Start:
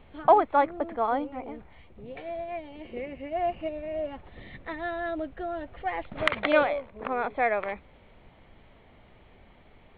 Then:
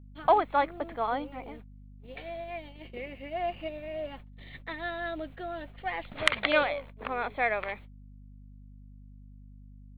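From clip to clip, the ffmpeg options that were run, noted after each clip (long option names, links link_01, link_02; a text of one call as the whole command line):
ffmpeg -i in.wav -af "crystalizer=i=6:c=0,agate=range=-45dB:threshold=-41dB:ratio=16:detection=peak,aeval=exprs='val(0)+0.00708*(sin(2*PI*50*n/s)+sin(2*PI*2*50*n/s)/2+sin(2*PI*3*50*n/s)/3+sin(2*PI*4*50*n/s)/4+sin(2*PI*5*50*n/s)/5)':channel_layout=same,volume=-5.5dB" out.wav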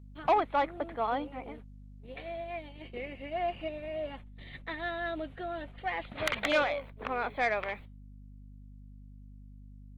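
ffmpeg -i in.wav -af "asoftclip=type=tanh:threshold=-18.5dB" -ar 48000 -c:a libopus -b:a 24k out.opus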